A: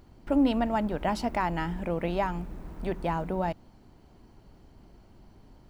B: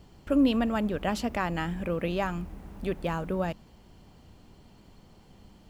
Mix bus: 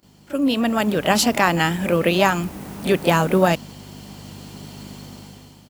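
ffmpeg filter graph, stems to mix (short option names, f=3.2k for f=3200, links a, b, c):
-filter_complex "[0:a]alimiter=limit=-23dB:level=0:latency=1,volume=-9dB[a];[1:a]aeval=exprs='val(0)+0.00562*(sin(2*PI*50*n/s)+sin(2*PI*2*50*n/s)/2+sin(2*PI*3*50*n/s)/3+sin(2*PI*4*50*n/s)/4+sin(2*PI*5*50*n/s)/5)':c=same,volume=-1,adelay=28,volume=0dB[b];[a][b]amix=inputs=2:normalize=0,highpass=140,highshelf=f=3.4k:g=11.5,dynaudnorm=f=210:g=7:m=15dB"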